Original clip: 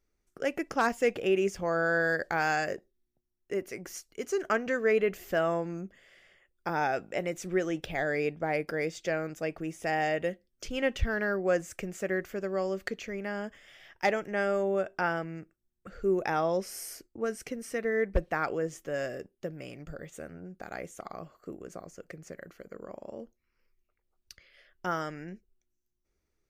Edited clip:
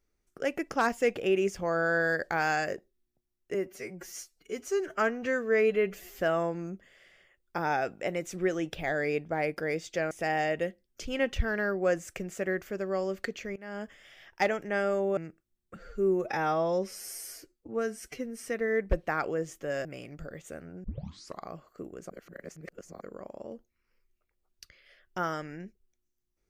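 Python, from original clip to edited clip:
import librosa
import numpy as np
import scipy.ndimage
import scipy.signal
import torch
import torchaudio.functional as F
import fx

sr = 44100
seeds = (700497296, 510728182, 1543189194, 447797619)

y = fx.edit(x, sr, fx.stretch_span(start_s=3.54, length_s=1.78, factor=1.5),
    fx.cut(start_s=9.22, length_s=0.52),
    fx.fade_in_from(start_s=13.19, length_s=0.28, floor_db=-21.0),
    fx.cut(start_s=14.8, length_s=0.5),
    fx.stretch_span(start_s=15.89, length_s=1.78, factor=1.5),
    fx.cut(start_s=19.09, length_s=0.44),
    fx.tape_start(start_s=20.52, length_s=0.56),
    fx.reverse_span(start_s=21.78, length_s=0.91), tone=tone)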